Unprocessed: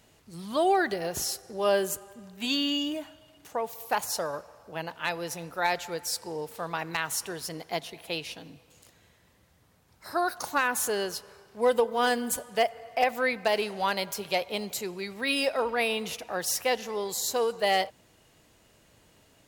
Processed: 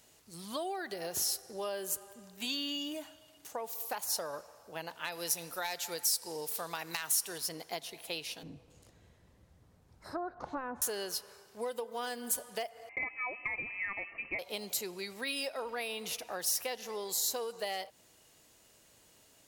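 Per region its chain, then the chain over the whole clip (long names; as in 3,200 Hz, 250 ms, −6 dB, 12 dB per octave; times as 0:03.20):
0:05.12–0:07.38: high-shelf EQ 3,200 Hz +10 dB + hard clipping −16.5 dBFS
0:08.43–0:10.82: treble cut that deepens with the level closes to 1,200 Hz, closed at −27 dBFS + spectral tilt −3.5 dB per octave
0:12.89–0:14.39: one scale factor per block 5 bits + voice inversion scrambler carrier 2,800 Hz + Butterworth band-reject 1,500 Hz, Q 4.2
whole clip: dynamic equaliser 7,300 Hz, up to −4 dB, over −49 dBFS, Q 2.2; downward compressor, threshold −30 dBFS; bass and treble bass −5 dB, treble +8 dB; level −4.5 dB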